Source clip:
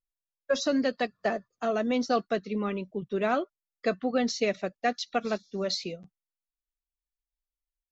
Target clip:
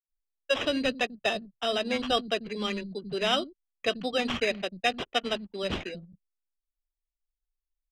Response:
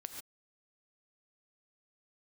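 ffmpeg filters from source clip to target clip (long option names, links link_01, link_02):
-filter_complex "[0:a]lowshelf=frequency=71:gain=11.5,acrossover=split=230[link_01][link_02];[link_01]adelay=90[link_03];[link_03][link_02]amix=inputs=2:normalize=0,acrusher=samples=10:mix=1:aa=0.000001,lowpass=5400,anlmdn=0.0158,equalizer=frequency=3000:width=1.6:gain=13,volume=-1.5dB"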